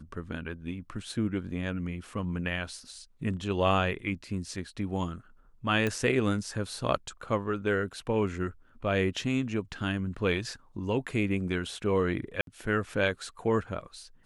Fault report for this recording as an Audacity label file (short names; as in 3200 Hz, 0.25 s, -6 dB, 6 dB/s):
5.870000	5.870000	pop -16 dBFS
12.410000	12.470000	gap 62 ms